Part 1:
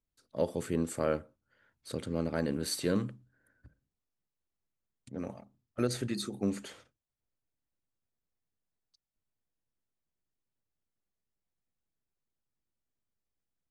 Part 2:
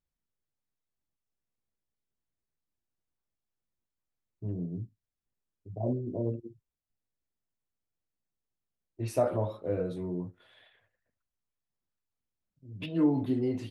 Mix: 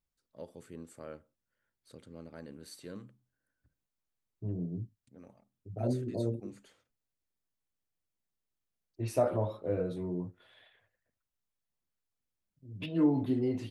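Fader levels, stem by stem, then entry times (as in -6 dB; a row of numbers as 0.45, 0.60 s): -15.5, -1.0 dB; 0.00, 0.00 s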